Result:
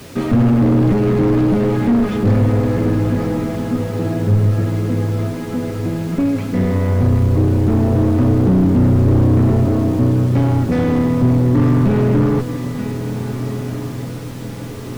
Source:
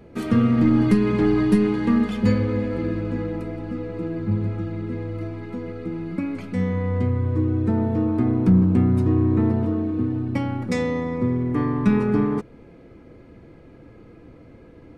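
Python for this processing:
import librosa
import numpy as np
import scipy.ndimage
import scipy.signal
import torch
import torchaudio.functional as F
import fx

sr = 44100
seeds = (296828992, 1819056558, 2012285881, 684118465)

p1 = scipy.signal.sosfilt(scipy.signal.butter(2, 67.0, 'highpass', fs=sr, output='sos'), x)
p2 = fx.low_shelf(p1, sr, hz=86.0, db=10.0)
p3 = p2 + fx.echo_feedback(p2, sr, ms=929, feedback_pct=33, wet_db=-16, dry=0)
p4 = fx.tube_stage(p3, sr, drive_db=17.0, bias=0.65)
p5 = fx.quant_dither(p4, sr, seeds[0], bits=8, dither='triangular')
p6 = np.clip(p5, -10.0 ** (-26.0 / 20.0), 10.0 ** (-26.0 / 20.0))
p7 = p5 + (p6 * 10.0 ** (-4.5 / 20.0))
p8 = fx.lowpass(p7, sr, hz=3800.0, slope=6)
p9 = p8 + 0.4 * np.pad(p8, (int(7.4 * sr / 1000.0), 0))[:len(p8)]
p10 = fx.echo_diffused(p9, sr, ms=1569, feedback_pct=59, wet_db=-13.5)
p11 = fx.slew_limit(p10, sr, full_power_hz=39.0)
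y = p11 * 10.0 ** (7.0 / 20.0)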